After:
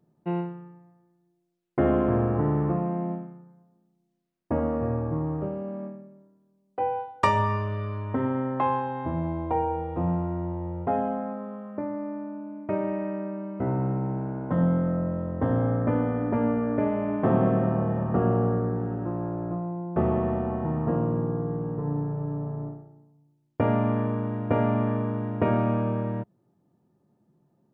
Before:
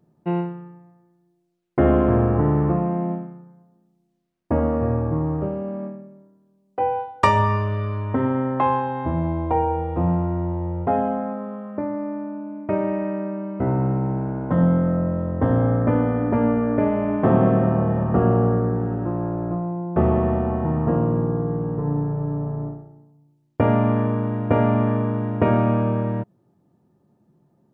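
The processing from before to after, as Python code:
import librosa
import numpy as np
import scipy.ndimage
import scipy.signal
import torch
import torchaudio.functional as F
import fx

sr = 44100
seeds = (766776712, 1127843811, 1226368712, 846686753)

y = fx.peak_eq(x, sr, hz=66.0, db=-7.0, octaves=0.57)
y = y * 10.0 ** (-5.0 / 20.0)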